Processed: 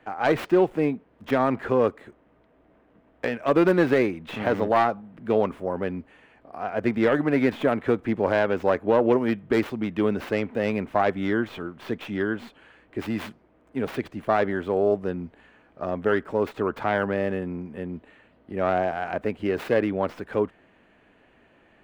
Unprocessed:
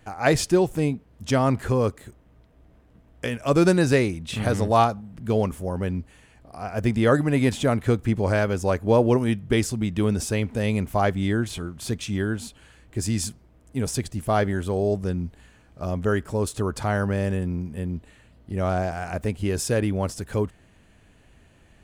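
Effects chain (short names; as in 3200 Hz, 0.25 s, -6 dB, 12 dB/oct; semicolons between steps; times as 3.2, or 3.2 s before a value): tracing distortion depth 0.41 ms; three-band isolator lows -18 dB, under 220 Hz, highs -22 dB, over 3000 Hz; maximiser +12 dB; gain -9 dB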